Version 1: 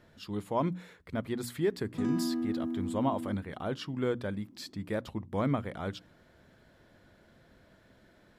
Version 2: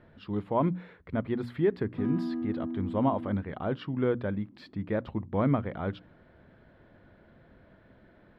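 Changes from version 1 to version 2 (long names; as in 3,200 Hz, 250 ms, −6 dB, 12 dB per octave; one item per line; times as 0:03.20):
speech +4.5 dB
master: add high-frequency loss of the air 420 metres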